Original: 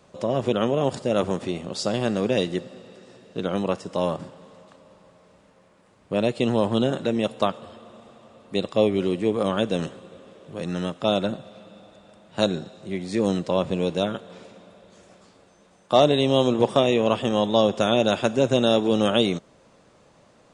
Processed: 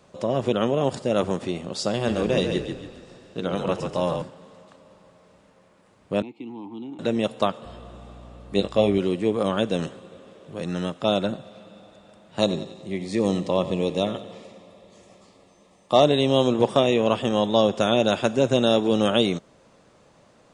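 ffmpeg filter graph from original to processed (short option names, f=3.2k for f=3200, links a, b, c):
-filter_complex "[0:a]asettb=1/sr,asplit=3[a][b][c];[a]atrim=end=1.934[d];[b]atrim=start=1.93:end=4.22,asetpts=PTS-STARTPTS,afade=t=in:d=0.004:c=qsin,afade=t=out:st=2.286:d=0.004:c=qsin,bandreject=f=50:t=h:w=6,bandreject=f=100:t=h:w=6,bandreject=f=150:t=h:w=6,bandreject=f=200:t=h:w=6,bandreject=f=250:t=h:w=6,bandreject=f=300:t=h:w=6,bandreject=f=350:t=h:w=6,bandreject=f=400:t=h:w=6,bandreject=f=450:t=h:w=6,asplit=6[e][f][g][h][i][j];[f]adelay=140,afreqshift=-36,volume=-6dB[k];[g]adelay=280,afreqshift=-72,volume=-14.2dB[l];[h]adelay=420,afreqshift=-108,volume=-22.4dB[m];[i]adelay=560,afreqshift=-144,volume=-30.5dB[n];[j]adelay=700,afreqshift=-180,volume=-38.7dB[o];[e][k][l][m][n][o]amix=inputs=6:normalize=0,atrim=end_sample=100989[p];[c]atrim=start=4.216[q];[d][p]acrossfade=d=0.004:c1=hsin:c2=qsin[r];[r][q]acrossfade=d=0.004:c1=qsin:c2=hsin,asettb=1/sr,asplit=3[s][t][u];[s]atrim=end=6.224[v];[t]atrim=start=6.22:end=6.99,asetpts=PTS-STARTPTS,afade=t=in:d=0.004:c=qsin,afade=t=out:st=0.766:d=0.004:c=qsin,asplit=3[w][x][y];[w]bandpass=f=300:t=q:w=8,volume=0dB[z];[x]bandpass=f=870:t=q:w=8,volume=-6dB[aa];[y]bandpass=f=2.24k:t=q:w=8,volume=-9dB[ab];[z][aa][ab]amix=inputs=3:normalize=0,acrossover=split=230|3000[ac][ad][ae];[ad]acompressor=threshold=-40dB:ratio=2:attack=3.2:release=140:knee=2.83:detection=peak[af];[ac][af][ae]amix=inputs=3:normalize=0[ag];[u]atrim=start=6.986[ah];[v][ag]acrossfade=d=0.004:c1=hsin:c2=qsin[ai];[ai][ah]acrossfade=d=0.004:c1=qsin:c2=hsin,asettb=1/sr,asplit=3[aj][ak][al];[aj]atrim=end=7.654[am];[ak]atrim=start=7.65:end=8.98,asetpts=PTS-STARTPTS,afade=t=in:d=0.004:c=qsin,afade=t=out:st=1.326:d=0.004:c=qsin,asplit=2[an][ao];[ao]adelay=20,volume=-5dB[ap];[an][ap]amix=inputs=2:normalize=0,atrim=end_sample=58653,aeval=exprs='val(0)+0.00708*(sin(2*PI*60*n/s)+sin(2*PI*2*60*n/s)/2+sin(2*PI*3*60*n/s)/3+sin(2*PI*4*60*n/s)/4+sin(2*PI*5*60*n/s)/5)':c=same[aq];[al]atrim=start=8.976[ar];[am][aq]acrossfade=d=0.004:c1=hsin:c2=qsin[as];[as][ar]acrossfade=d=0.004:c1=qsin:c2=hsin,asettb=1/sr,asplit=3[at][au][av];[at]atrim=end=12.394[aw];[au]atrim=start=12.39:end=16.04,asetpts=PTS-STARTPTS,afade=t=in:d=0.004:c=qsin,afade=t=out:st=3.646:d=0.004:c=qsin,asuperstop=centerf=1500:order=4:qfactor=4.4,aecho=1:1:92|184|276|368|460:0.2|0.106|0.056|0.0297|0.0157,atrim=end_sample=160965[ax];[av]atrim=start=16.036[ay];[aw][ax]acrossfade=d=0.004:c1=hsin:c2=qsin[az];[az][ay]acrossfade=d=0.004:c1=qsin:c2=hsin"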